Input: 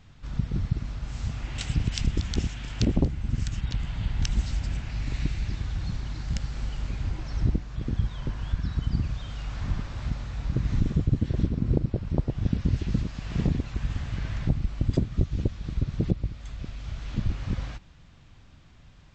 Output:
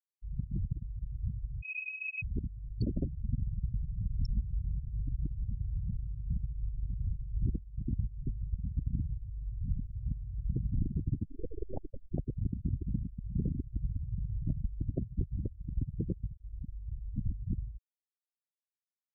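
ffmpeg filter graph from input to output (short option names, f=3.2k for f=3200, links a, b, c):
-filter_complex "[0:a]asettb=1/sr,asplit=3[a][b][c];[a]atrim=end=1.624[d];[b]atrim=start=1.62:end=2.22,asetpts=PTS-STARTPTS,afade=t=in:d=0.004:c=qsin,afade=t=out:st=0.596:d=0.004:c=qsin,equalizer=f=150:w=1.4:g=-7.5,acompressor=threshold=-30dB:ratio=5:attack=3.2:release=140:knee=1:detection=peak,lowpass=f=2.2k:t=q:w=0.5098,lowpass=f=2.2k:t=q:w=0.6013,lowpass=f=2.2k:t=q:w=0.9,lowpass=f=2.2k:t=q:w=2.563,afreqshift=-2600[e];[c]atrim=start=2.216[f];[d][e]acrossfade=d=0.004:c1=hsin:c2=qsin[g];[g][f]acrossfade=d=0.004:c1=qsin:c2=hsin,asettb=1/sr,asplit=3[h][i][j];[h]atrim=end=11.254[k];[i]atrim=start=11.25:end=12.14,asetpts=PTS-STARTPTS,afade=t=in:d=0.004:c=qsin,afade=t=out:st=0.886:d=0.004:c=qsin,highpass=f=140:w=0.5412,highpass=f=140:w=1.3066,aeval=exprs='abs(val(0))':c=same[l];[j]atrim=start=12.136[m];[k][l]acrossfade=d=0.004:c1=hsin:c2=qsin[n];[n][m]acrossfade=d=0.004:c1=qsin:c2=hsin,afftfilt=real='re*gte(hypot(re,im),0.1)':imag='im*gte(hypot(re,im),0.1)':win_size=1024:overlap=0.75,alimiter=limit=-17.5dB:level=0:latency=1:release=293,volume=-4.5dB"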